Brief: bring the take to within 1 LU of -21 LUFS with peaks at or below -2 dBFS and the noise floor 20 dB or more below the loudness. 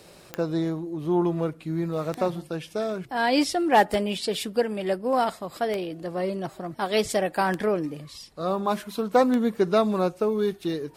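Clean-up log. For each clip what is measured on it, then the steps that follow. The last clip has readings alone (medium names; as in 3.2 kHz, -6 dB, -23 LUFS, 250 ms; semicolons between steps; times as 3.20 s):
clicks found 6; loudness -26.0 LUFS; peak level -8.5 dBFS; loudness target -21.0 LUFS
-> de-click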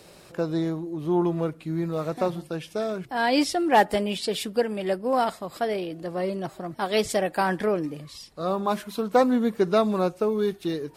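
clicks found 0; loudness -26.0 LUFS; peak level -8.5 dBFS; loudness target -21.0 LUFS
-> trim +5 dB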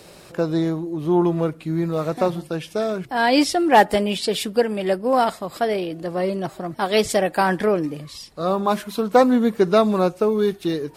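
loudness -21.0 LUFS; peak level -3.5 dBFS; noise floor -46 dBFS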